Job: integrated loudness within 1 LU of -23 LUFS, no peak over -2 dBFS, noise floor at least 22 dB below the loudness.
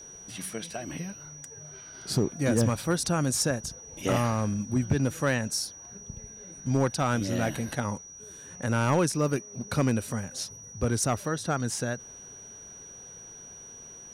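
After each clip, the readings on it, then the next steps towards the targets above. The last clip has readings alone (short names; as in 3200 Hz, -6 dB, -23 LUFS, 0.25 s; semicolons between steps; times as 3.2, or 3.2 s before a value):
clipped 0.3%; flat tops at -17.0 dBFS; steady tone 5800 Hz; tone level -44 dBFS; loudness -29.0 LUFS; peak -17.0 dBFS; loudness target -23.0 LUFS
-> clip repair -17 dBFS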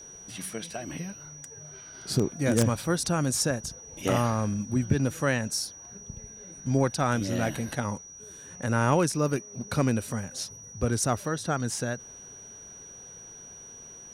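clipped 0.0%; steady tone 5800 Hz; tone level -44 dBFS
-> notch 5800 Hz, Q 30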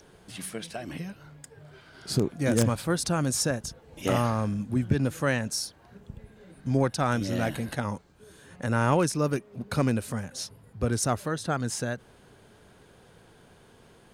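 steady tone none; loudness -28.5 LUFS; peak -8.0 dBFS; loudness target -23.0 LUFS
-> gain +5.5 dB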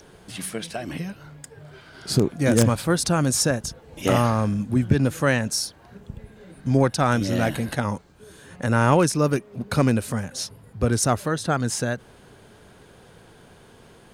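loudness -23.0 LUFS; peak -2.5 dBFS; noise floor -51 dBFS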